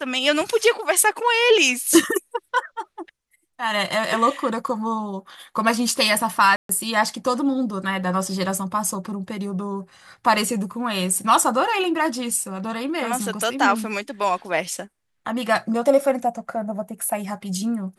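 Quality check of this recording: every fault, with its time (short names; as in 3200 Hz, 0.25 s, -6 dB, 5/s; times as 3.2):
6.56–6.69 gap 0.133 s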